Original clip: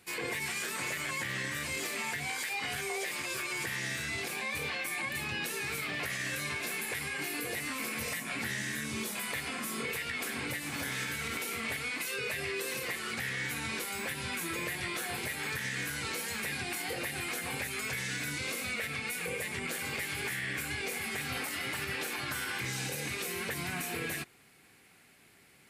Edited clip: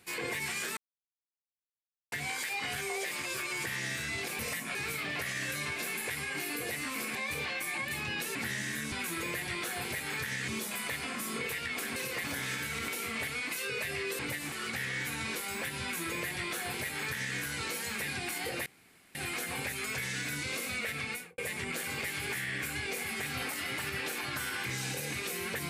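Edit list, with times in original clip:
0.77–2.12 s: mute
4.39–5.59 s: swap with 7.99–8.35 s
10.40–10.73 s: swap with 12.68–12.96 s
14.25–15.81 s: copy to 8.92 s
17.10 s: insert room tone 0.49 s
19.05–19.33 s: studio fade out

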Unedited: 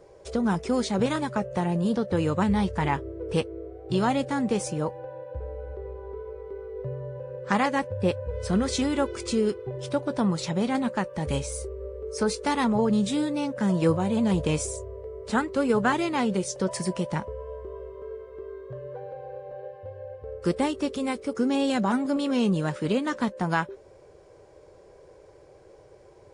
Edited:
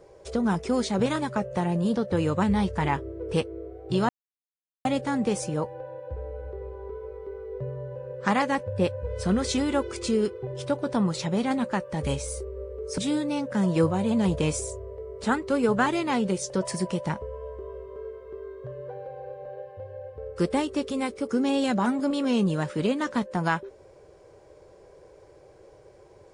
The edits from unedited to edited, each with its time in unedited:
4.09 s: insert silence 0.76 s
12.22–13.04 s: delete

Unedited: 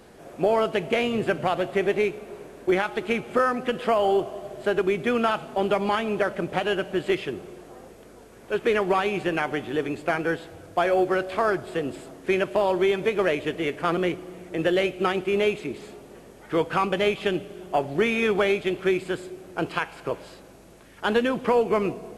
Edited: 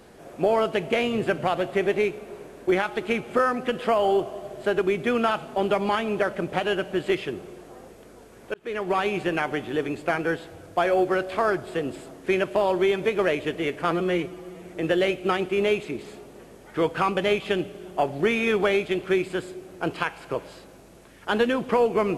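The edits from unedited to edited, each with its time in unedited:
8.54–9.03 s: fade in
13.91–14.40 s: stretch 1.5×

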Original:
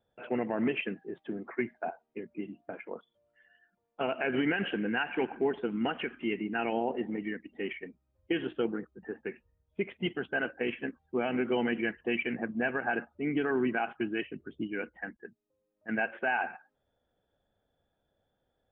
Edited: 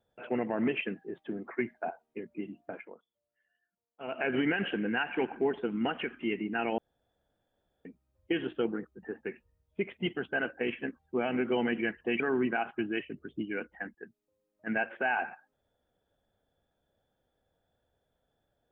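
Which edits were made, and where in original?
2.77–4.20 s: dip -14.5 dB, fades 0.19 s
6.78–7.85 s: room tone
12.20–13.42 s: delete

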